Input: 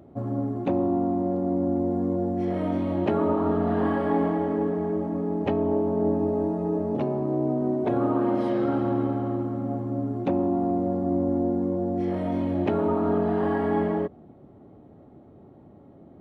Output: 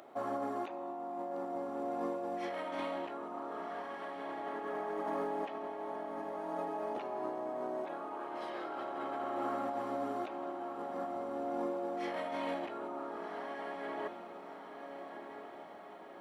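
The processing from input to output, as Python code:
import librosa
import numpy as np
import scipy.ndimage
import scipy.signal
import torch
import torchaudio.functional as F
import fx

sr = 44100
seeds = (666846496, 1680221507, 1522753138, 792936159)

y = scipy.signal.sosfilt(scipy.signal.butter(2, 1000.0, 'highpass', fs=sr, output='sos'), x)
y = fx.over_compress(y, sr, threshold_db=-45.0, ratio=-1.0)
y = fx.echo_diffused(y, sr, ms=1423, feedback_pct=54, wet_db=-8.0)
y = y * librosa.db_to_amplitude(4.5)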